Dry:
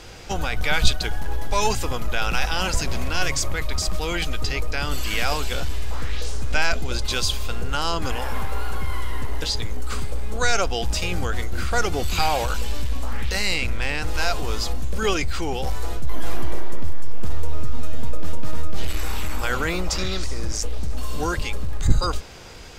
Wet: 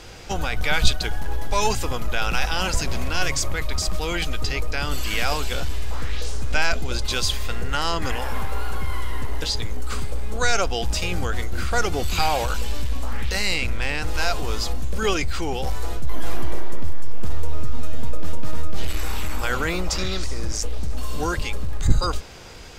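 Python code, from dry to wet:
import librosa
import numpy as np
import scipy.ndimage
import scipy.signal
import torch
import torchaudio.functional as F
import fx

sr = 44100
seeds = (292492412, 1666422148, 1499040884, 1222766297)

y = fx.peak_eq(x, sr, hz=1900.0, db=10.0, octaves=0.29, at=(7.24, 8.16))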